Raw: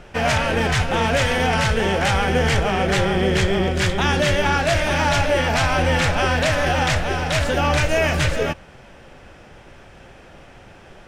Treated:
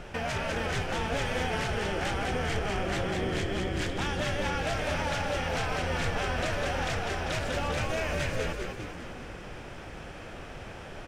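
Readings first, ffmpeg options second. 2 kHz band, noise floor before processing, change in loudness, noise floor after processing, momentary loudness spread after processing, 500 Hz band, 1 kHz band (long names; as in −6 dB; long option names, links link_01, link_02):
−11.5 dB, −45 dBFS, −11.5 dB, −43 dBFS, 13 LU, −11.0 dB, −11.5 dB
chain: -filter_complex "[0:a]acompressor=threshold=-37dB:ratio=2.5,asplit=2[link_01][link_02];[link_02]asplit=8[link_03][link_04][link_05][link_06][link_07][link_08][link_09][link_10];[link_03]adelay=200,afreqshift=-62,volume=-3.5dB[link_11];[link_04]adelay=400,afreqshift=-124,volume=-8.2dB[link_12];[link_05]adelay=600,afreqshift=-186,volume=-13dB[link_13];[link_06]adelay=800,afreqshift=-248,volume=-17.7dB[link_14];[link_07]adelay=1000,afreqshift=-310,volume=-22.4dB[link_15];[link_08]adelay=1200,afreqshift=-372,volume=-27.2dB[link_16];[link_09]adelay=1400,afreqshift=-434,volume=-31.9dB[link_17];[link_10]adelay=1600,afreqshift=-496,volume=-36.6dB[link_18];[link_11][link_12][link_13][link_14][link_15][link_16][link_17][link_18]amix=inputs=8:normalize=0[link_19];[link_01][link_19]amix=inputs=2:normalize=0"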